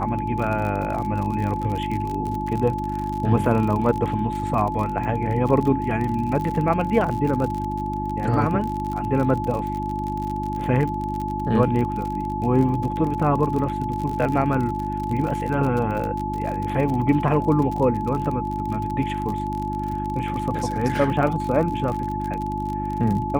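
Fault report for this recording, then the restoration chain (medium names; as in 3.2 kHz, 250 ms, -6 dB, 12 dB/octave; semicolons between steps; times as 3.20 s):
crackle 45 per s -27 dBFS
hum 50 Hz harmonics 7 -29 dBFS
whine 860 Hz -27 dBFS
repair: de-click; de-hum 50 Hz, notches 7; band-stop 860 Hz, Q 30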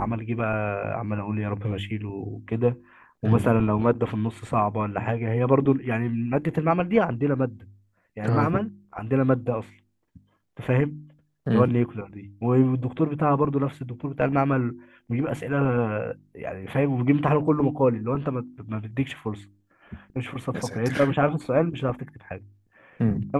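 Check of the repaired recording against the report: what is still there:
nothing left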